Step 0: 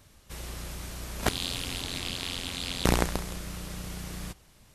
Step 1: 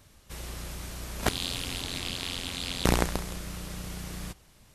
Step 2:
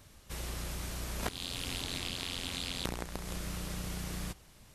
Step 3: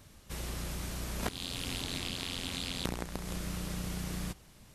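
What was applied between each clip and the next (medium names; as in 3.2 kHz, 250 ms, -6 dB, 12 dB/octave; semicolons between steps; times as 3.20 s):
no audible change
compression 12:1, threshold -32 dBFS, peak gain reduction 15.5 dB
peaking EQ 200 Hz +3.5 dB 1.6 oct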